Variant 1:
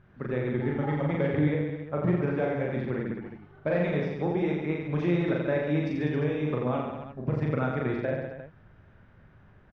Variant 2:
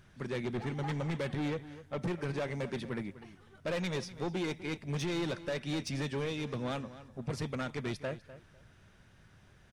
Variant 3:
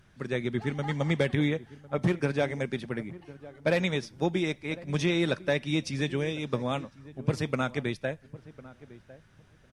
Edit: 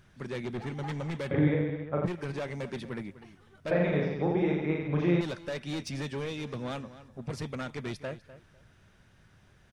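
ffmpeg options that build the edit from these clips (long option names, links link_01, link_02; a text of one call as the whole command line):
ffmpeg -i take0.wav -i take1.wav -filter_complex "[0:a]asplit=2[link_01][link_02];[1:a]asplit=3[link_03][link_04][link_05];[link_03]atrim=end=1.312[link_06];[link_01]atrim=start=1.308:end=2.062[link_07];[link_04]atrim=start=2.058:end=3.712[link_08];[link_02]atrim=start=3.708:end=5.212[link_09];[link_05]atrim=start=5.208[link_10];[link_06][link_07]acrossfade=duration=0.004:curve1=hsin:curve2=hsin[link_11];[link_11][link_08]acrossfade=duration=0.004:curve1=hsin:curve2=hsin[link_12];[link_12][link_09]acrossfade=duration=0.004:curve1=hsin:curve2=hsin[link_13];[link_13][link_10]acrossfade=duration=0.004:curve1=hsin:curve2=hsin" out.wav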